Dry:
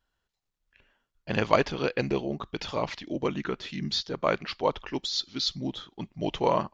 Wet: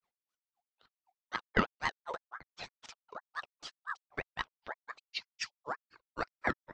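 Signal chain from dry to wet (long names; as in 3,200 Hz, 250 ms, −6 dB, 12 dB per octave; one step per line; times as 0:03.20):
granular cloud 129 ms, grains 3.9 per second, spray 100 ms, pitch spread up and down by 3 semitones
ring modulator whose carrier an LFO sweeps 1,100 Hz, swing 35%, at 5.9 Hz
level −1.5 dB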